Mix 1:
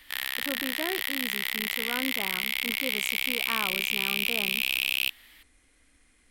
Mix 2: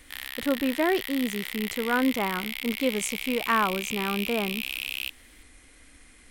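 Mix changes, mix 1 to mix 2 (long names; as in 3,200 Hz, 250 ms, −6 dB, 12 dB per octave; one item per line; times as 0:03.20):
speech +10.0 dB
background −5.5 dB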